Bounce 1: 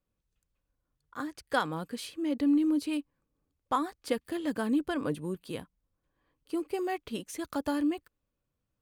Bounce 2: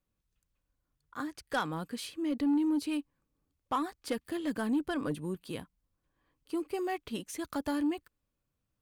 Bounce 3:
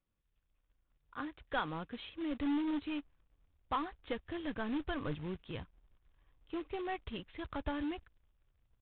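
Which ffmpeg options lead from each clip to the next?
-af "equalizer=f=500:t=o:w=0.67:g=-3,asoftclip=type=tanh:threshold=0.075"
-af "asubboost=boost=9.5:cutoff=76,aresample=11025,acrusher=bits=3:mode=log:mix=0:aa=0.000001,aresample=44100,aresample=8000,aresample=44100,volume=0.708"

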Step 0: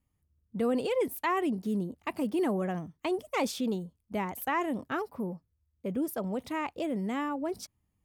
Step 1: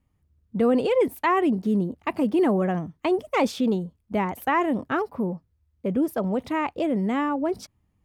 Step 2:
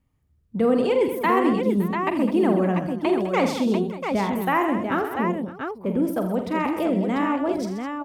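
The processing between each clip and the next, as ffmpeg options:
-af "highshelf=f=4600:g=-11.5,volume=2.51"
-af "aecho=1:1:45|81|130|207|564|692:0.355|0.251|0.266|0.251|0.119|0.531"

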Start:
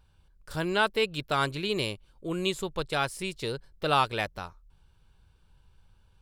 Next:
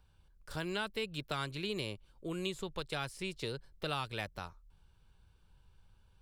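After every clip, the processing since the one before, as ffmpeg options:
-filter_complex "[0:a]acrossover=split=230|1700|6400[s0][s1][s2][s3];[s0]acompressor=threshold=0.0112:ratio=4[s4];[s1]acompressor=threshold=0.0158:ratio=4[s5];[s2]acompressor=threshold=0.0158:ratio=4[s6];[s3]acompressor=threshold=0.00224:ratio=4[s7];[s4][s5][s6][s7]amix=inputs=4:normalize=0,volume=0.668"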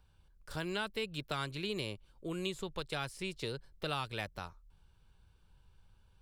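-af anull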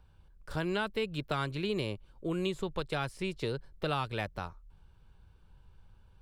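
-af "highshelf=f=2600:g=-9.5,volume=2"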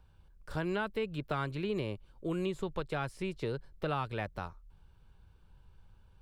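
-filter_complex "[0:a]acrossover=split=2600[s0][s1];[s1]acompressor=threshold=0.00316:ratio=4:attack=1:release=60[s2];[s0][s2]amix=inputs=2:normalize=0,volume=0.891"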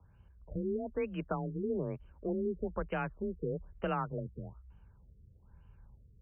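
-af "afreqshift=26,afftfilt=real='re*lt(b*sr/1024,480*pow(3200/480,0.5+0.5*sin(2*PI*1.1*pts/sr)))':imag='im*lt(b*sr/1024,480*pow(3200/480,0.5+0.5*sin(2*PI*1.1*pts/sr)))':win_size=1024:overlap=0.75"

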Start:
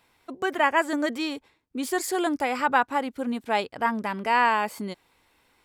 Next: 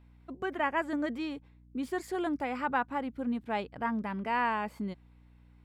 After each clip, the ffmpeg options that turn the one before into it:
-af "bass=f=250:g=10,treble=f=4000:g=-11,aeval=exprs='val(0)+0.00398*(sin(2*PI*60*n/s)+sin(2*PI*2*60*n/s)/2+sin(2*PI*3*60*n/s)/3+sin(2*PI*4*60*n/s)/4+sin(2*PI*5*60*n/s)/5)':c=same,volume=0.376"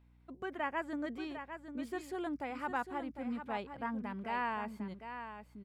-af "aecho=1:1:752:0.355,volume=0.473"

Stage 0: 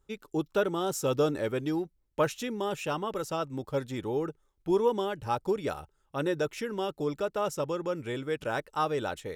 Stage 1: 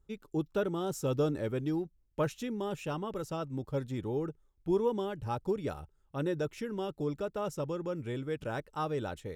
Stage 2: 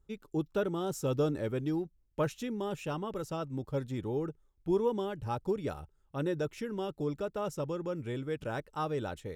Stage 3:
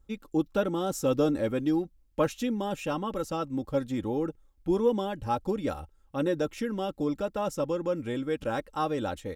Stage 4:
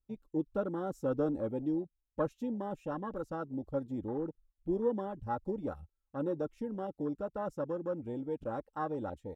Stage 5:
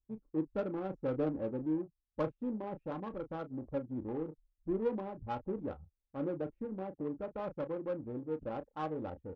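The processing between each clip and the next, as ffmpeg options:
-af "lowshelf=f=300:g=11,volume=0.422"
-af anull
-af "aecho=1:1:3.7:0.53,volume=1.68"
-af "afwtdn=0.0224,volume=0.473"
-filter_complex "[0:a]asplit=2[s0][s1];[s1]adelay=32,volume=0.355[s2];[s0][s2]amix=inputs=2:normalize=0,adynamicsmooth=sensitivity=3.5:basefreq=680,volume=0.794"

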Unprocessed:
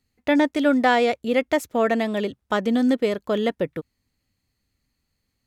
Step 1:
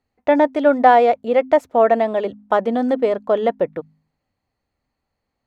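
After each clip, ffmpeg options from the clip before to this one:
-af "lowpass=f=3300:p=1,equalizer=f=740:w=0.78:g=14,bandreject=f=51.96:t=h:w=4,bandreject=f=103.92:t=h:w=4,bandreject=f=155.88:t=h:w=4,bandreject=f=207.84:t=h:w=4,bandreject=f=259.8:t=h:w=4,volume=0.631"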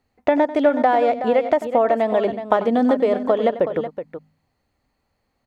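-af "acompressor=threshold=0.1:ratio=6,aecho=1:1:93|373:0.178|0.299,volume=1.88"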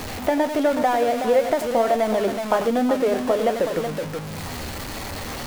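-af "aeval=exprs='val(0)+0.5*0.0891*sgn(val(0))':c=same,flanger=delay=8.8:depth=4.6:regen=59:speed=1.4:shape=triangular"

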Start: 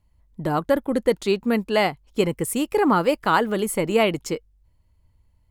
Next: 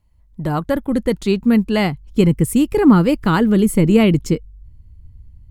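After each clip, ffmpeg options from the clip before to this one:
-af "asubboost=boost=9.5:cutoff=240,volume=1.19"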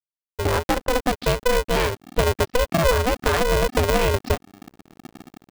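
-af "acompressor=threshold=0.1:ratio=4,aresample=11025,aeval=exprs='sgn(val(0))*max(abs(val(0))-0.01,0)':c=same,aresample=44100,aeval=exprs='val(0)*sgn(sin(2*PI*250*n/s))':c=same,volume=1.41"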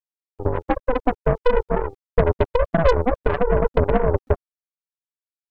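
-af "afftfilt=real='re*gte(hypot(re,im),0.316)':imag='im*gte(hypot(re,im),0.316)':win_size=1024:overlap=0.75,aeval=exprs='val(0)*gte(abs(val(0)),0.00422)':c=same,aeval=exprs='0.355*(cos(1*acos(clip(val(0)/0.355,-1,1)))-cos(1*PI/2))+0.0501*(cos(3*acos(clip(val(0)/0.355,-1,1)))-cos(3*PI/2))+0.0282*(cos(6*acos(clip(val(0)/0.355,-1,1)))-cos(6*PI/2))+0.0224*(cos(7*acos(clip(val(0)/0.355,-1,1)))-cos(7*PI/2))':c=same,volume=1.78"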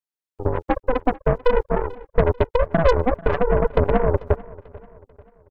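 -af "aecho=1:1:441|882|1323:0.0891|0.0401|0.018"

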